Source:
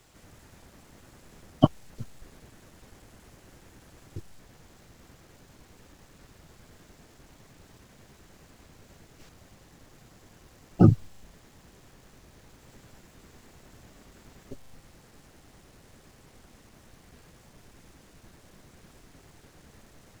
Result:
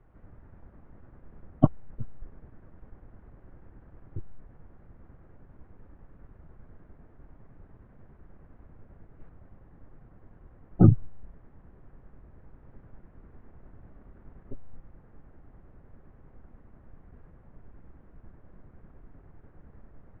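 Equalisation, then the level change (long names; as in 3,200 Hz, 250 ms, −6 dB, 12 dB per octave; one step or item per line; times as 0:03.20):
transistor ladder low-pass 2,100 Hz, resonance 25%
spectral tilt −4 dB per octave
low-shelf EQ 290 Hz −6 dB
0.0 dB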